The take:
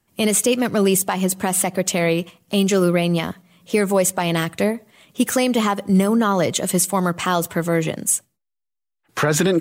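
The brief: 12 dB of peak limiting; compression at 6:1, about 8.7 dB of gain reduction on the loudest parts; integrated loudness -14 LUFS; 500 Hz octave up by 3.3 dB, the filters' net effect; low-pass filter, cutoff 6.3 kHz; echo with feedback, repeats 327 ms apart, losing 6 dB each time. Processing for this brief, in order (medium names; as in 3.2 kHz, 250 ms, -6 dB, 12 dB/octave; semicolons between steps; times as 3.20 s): low-pass 6.3 kHz; peaking EQ 500 Hz +4 dB; compression 6:1, threshold -20 dBFS; peak limiter -20 dBFS; feedback delay 327 ms, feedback 50%, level -6 dB; trim +15 dB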